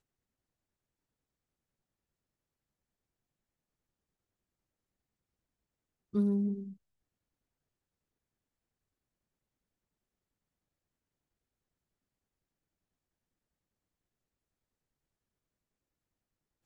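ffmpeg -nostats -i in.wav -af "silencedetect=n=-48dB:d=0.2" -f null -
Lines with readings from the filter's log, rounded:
silence_start: 0.00
silence_end: 6.13 | silence_duration: 6.13
silence_start: 6.73
silence_end: 16.65 | silence_duration: 9.92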